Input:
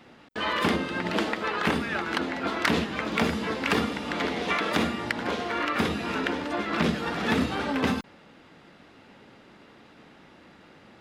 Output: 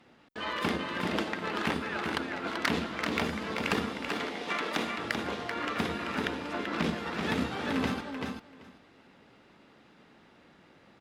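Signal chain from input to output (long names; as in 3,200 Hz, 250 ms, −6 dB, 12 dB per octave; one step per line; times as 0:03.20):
on a send: repeating echo 386 ms, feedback 15%, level −4 dB
on the sum: harmonic generator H 3 −18 dB, 7 −40 dB, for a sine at −10 dBFS
0:04.08–0:04.98: high-pass filter 270 Hz 6 dB per octave
level −2.5 dB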